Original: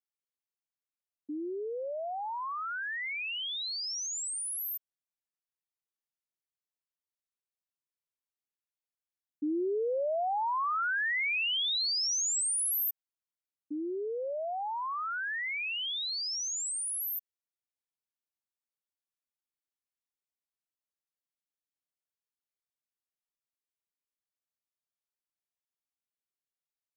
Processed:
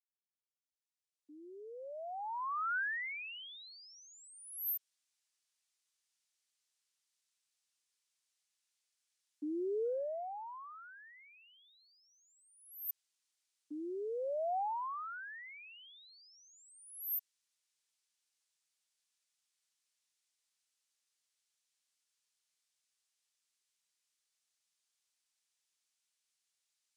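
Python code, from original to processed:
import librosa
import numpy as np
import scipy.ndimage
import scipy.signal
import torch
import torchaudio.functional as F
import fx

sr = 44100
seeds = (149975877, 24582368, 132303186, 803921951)

y = fx.fade_in_head(x, sr, length_s=4.63)
y = fx.weighting(y, sr, curve='ITU-R 468')
y = fx.over_compress(y, sr, threshold_db=-37.0, ratio=-0.5)
y = y * librosa.db_to_amplitude(-6.5)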